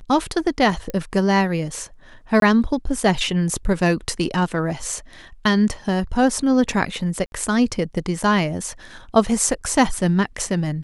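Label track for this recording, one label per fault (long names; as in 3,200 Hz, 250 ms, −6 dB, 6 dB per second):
0.900000	0.900000	click −14 dBFS
2.400000	2.420000	drop-out 22 ms
7.260000	7.320000	drop-out 61 ms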